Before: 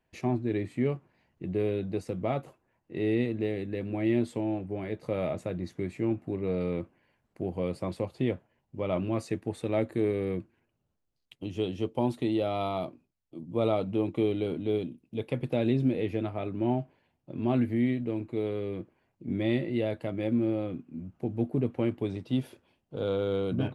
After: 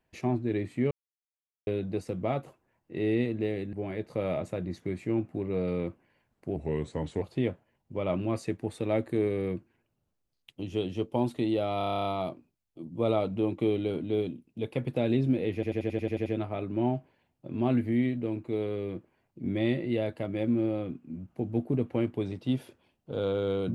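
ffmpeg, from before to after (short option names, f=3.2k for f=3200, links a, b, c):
-filter_complex "[0:a]asplit=23[a][b][c][d][e][f][g][h][i][j][k][l][m][n][o][p][q][r][s][t][u][v][w];[a]atrim=end=0.91,asetpts=PTS-STARTPTS,afade=t=out:st=0.906:d=0.004:c=hsin[x];[b]atrim=start=0.91:end=1.67,asetpts=PTS-STARTPTS,volume=0[y];[c]atrim=start=1.67:end=3.732,asetpts=PTS-STARTPTS,afade=t=in:d=0.004:c=hsin[z];[d]atrim=start=4.658:end=7.494[aa];[e]atrim=start=7.49:end=8.05,asetpts=PTS-STARTPTS,asetrate=37485,aresample=44100,atrim=end_sample=29054,asetpts=PTS-STARTPTS[ab];[f]atrim=start=8.046:end=12.642[ac];[g]atrim=start=12.608:end=12.642[ad];[h]atrim=start=12.608:end=12.642[ae];[i]atrim=start=12.608:end=12.642[af];[j]atrim=start=12.608:end=12.642[ag];[k]atrim=start=12.608:end=12.642[ah];[l]atrim=start=12.608:end=12.642[ai];[m]atrim=start=12.608:end=12.642[aj];[n]atrim=start=12.608:end=12.642[ak];[o]atrim=start=12.608:end=16.192[al];[p]atrim=start=16.098:end=16.192[am];[q]atrim=start=16.098:end=16.192[an];[r]atrim=start=16.098:end=16.192[ao];[s]atrim=start=16.098:end=16.192[ap];[t]atrim=start=16.098:end=16.192[aq];[u]atrim=start=16.098:end=16.192[ar];[v]atrim=start=16.098:end=16.192[as];[w]atrim=start=16.098[at];[x][y][z]concat=n=3:v=0:a=1[au];[au][aa]acrossfade=d=0.004:c1=hsin:c2=hsin[av];[av][ab]acrossfade=d=0.004:c1=hsin:c2=hsin[aw];[aw][ac]acrossfade=d=0.004:c1=hsin:c2=hsin[ax];[ax][ad]acrossfade=d=0.004:c1=hsin:c2=hsin[ay];[ay][ae]acrossfade=d=0.004:c1=hsin:c2=hsin[az];[az][af]acrossfade=d=0.004:c1=hsin:c2=hsin[ba];[ba][ag]acrossfade=d=0.004:c1=hsin:c2=hsin[bb];[bb][ah]acrossfade=d=0.004:c1=hsin:c2=hsin[bc];[bc][ai]acrossfade=d=0.004:c1=hsin:c2=hsin[bd];[bd][aj]acrossfade=d=0.004:c1=hsin:c2=hsin[be];[be][ak]acrossfade=d=0.004:c1=hsin:c2=hsin[bf];[bf][al]acrossfade=d=0.004:c1=hsin:c2=hsin[bg];[bg][am]acrossfade=d=0.004:c1=hsin:c2=hsin[bh];[bh][an]acrossfade=d=0.004:c1=hsin:c2=hsin[bi];[bi][ao]acrossfade=d=0.004:c1=hsin:c2=hsin[bj];[bj][ap]acrossfade=d=0.004:c1=hsin:c2=hsin[bk];[bk][aq]acrossfade=d=0.004:c1=hsin:c2=hsin[bl];[bl][ar]acrossfade=d=0.004:c1=hsin:c2=hsin[bm];[bm][as]acrossfade=d=0.004:c1=hsin:c2=hsin[bn];[bn][at]acrossfade=d=0.004:c1=hsin:c2=hsin"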